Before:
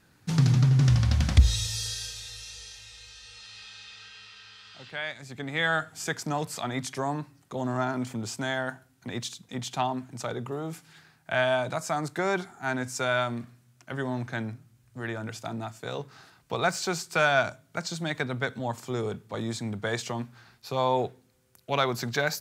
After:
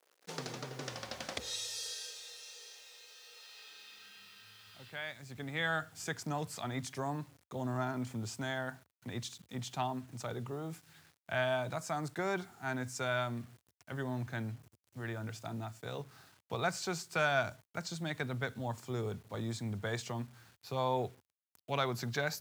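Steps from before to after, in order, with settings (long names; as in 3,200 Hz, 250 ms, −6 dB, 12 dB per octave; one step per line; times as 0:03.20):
bit reduction 9 bits
high-pass filter sweep 470 Hz → 80 Hz, 0:03.58–0:04.76
level −8 dB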